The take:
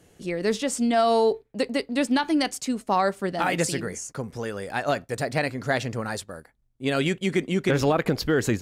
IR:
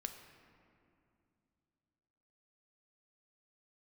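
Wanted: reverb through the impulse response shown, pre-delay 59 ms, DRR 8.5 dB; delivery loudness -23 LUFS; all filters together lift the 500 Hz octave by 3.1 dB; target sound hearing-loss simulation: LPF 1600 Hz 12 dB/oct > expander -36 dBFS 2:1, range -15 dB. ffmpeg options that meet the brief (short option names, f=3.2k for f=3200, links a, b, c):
-filter_complex "[0:a]equalizer=f=500:t=o:g=4,asplit=2[a][b];[1:a]atrim=start_sample=2205,adelay=59[c];[b][c]afir=irnorm=-1:irlink=0,volume=-6.5dB[d];[a][d]amix=inputs=2:normalize=0,lowpass=1.6k,agate=range=-15dB:threshold=-36dB:ratio=2,volume=0.5dB"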